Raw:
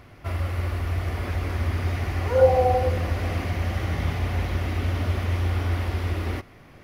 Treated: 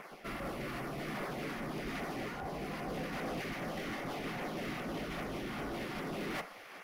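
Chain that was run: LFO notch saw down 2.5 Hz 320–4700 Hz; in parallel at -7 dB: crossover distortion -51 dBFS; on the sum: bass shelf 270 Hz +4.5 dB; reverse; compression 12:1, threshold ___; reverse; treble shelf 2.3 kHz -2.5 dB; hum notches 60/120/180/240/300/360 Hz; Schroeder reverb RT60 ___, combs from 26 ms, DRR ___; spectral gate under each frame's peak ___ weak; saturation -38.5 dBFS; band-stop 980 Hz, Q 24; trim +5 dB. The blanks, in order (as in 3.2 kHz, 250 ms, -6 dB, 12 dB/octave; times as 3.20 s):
-26 dBFS, 1.3 s, 16.5 dB, -15 dB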